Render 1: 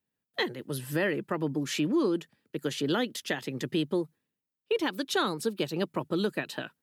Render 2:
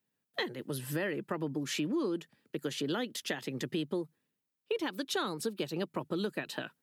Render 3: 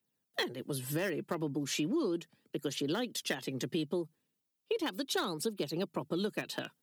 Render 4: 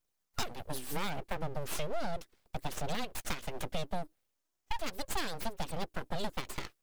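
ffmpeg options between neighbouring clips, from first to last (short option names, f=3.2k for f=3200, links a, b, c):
-af "acompressor=threshold=-38dB:ratio=2,highpass=92,volume=2dB"
-filter_complex "[0:a]acrossover=split=110|1600|2000[a][b][c][d];[c]acrusher=bits=6:mix=0:aa=0.000001[e];[d]aphaser=in_gain=1:out_gain=1:delay=4:decay=0.59:speed=0.36:type=triangular[f];[a][b][e][f]amix=inputs=4:normalize=0"
-af "aeval=exprs='abs(val(0))':c=same,volume=1dB"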